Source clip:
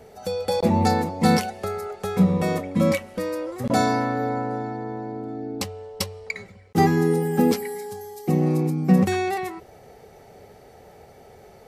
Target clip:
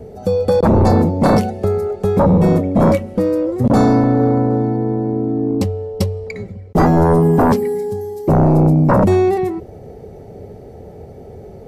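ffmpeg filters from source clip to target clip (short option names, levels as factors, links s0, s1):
-filter_complex "[0:a]equalizer=f=89:t=o:w=0.77:g=2.5,acrossover=split=530[s0][s1];[s0]aeval=exprs='0.531*sin(PI/2*5.01*val(0)/0.531)':c=same[s2];[s2][s1]amix=inputs=2:normalize=0,volume=0.75"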